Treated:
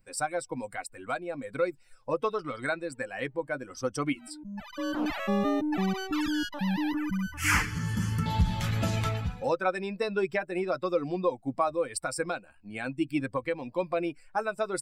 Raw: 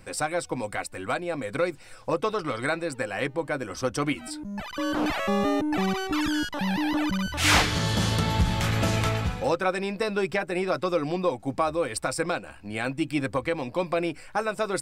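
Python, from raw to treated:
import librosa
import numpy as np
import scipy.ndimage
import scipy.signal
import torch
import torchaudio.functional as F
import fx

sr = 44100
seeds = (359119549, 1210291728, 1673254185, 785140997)

y = fx.bin_expand(x, sr, power=1.5)
y = fx.fixed_phaser(y, sr, hz=1600.0, stages=4, at=(6.92, 8.26))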